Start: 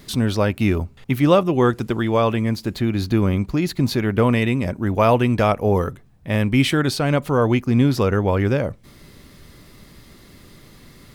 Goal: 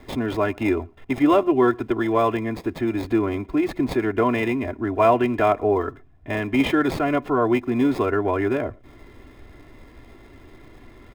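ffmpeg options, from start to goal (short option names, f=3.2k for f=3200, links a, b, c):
-filter_complex "[0:a]aecho=1:1:2.9:0.99,acrossover=split=210|3000[a][b][c];[a]acompressor=threshold=-32dB:ratio=6[d];[c]acrusher=samples=30:mix=1:aa=0.000001[e];[d][b][e]amix=inputs=3:normalize=0,asplit=2[f][g];[g]adelay=116.6,volume=-28dB,highshelf=f=4k:g=-2.62[h];[f][h]amix=inputs=2:normalize=0,volume=-3dB"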